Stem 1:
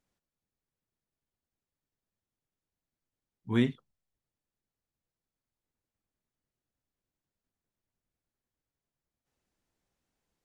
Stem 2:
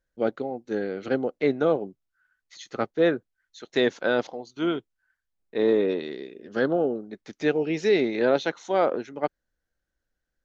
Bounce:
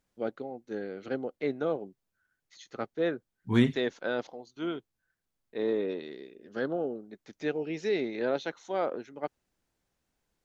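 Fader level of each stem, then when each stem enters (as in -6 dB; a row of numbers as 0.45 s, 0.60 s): +3.0 dB, -8.0 dB; 0.00 s, 0.00 s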